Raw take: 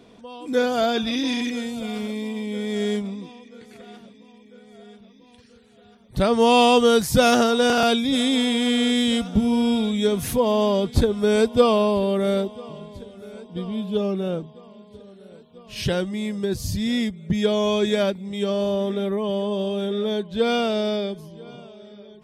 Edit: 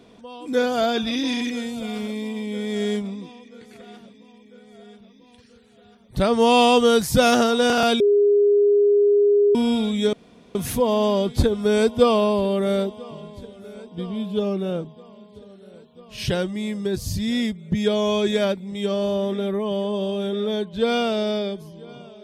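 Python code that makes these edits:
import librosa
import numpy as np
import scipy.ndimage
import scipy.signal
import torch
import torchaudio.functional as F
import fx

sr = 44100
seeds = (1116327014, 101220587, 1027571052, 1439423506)

y = fx.edit(x, sr, fx.bleep(start_s=8.0, length_s=1.55, hz=409.0, db=-13.0),
    fx.insert_room_tone(at_s=10.13, length_s=0.42), tone=tone)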